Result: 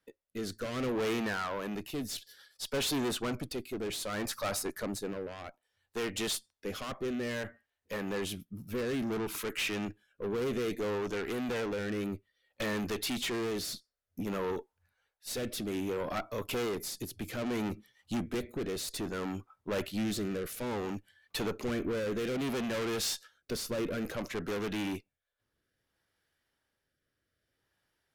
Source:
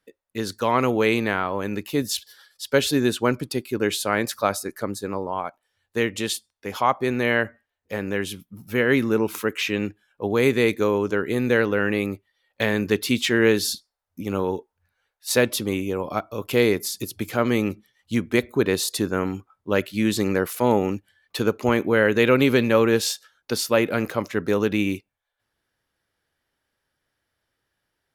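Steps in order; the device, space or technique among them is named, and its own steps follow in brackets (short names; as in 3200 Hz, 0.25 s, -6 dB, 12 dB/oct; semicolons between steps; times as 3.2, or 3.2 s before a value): overdriven rotary cabinet (tube stage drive 29 dB, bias 0.4; rotary speaker horn 0.6 Hz)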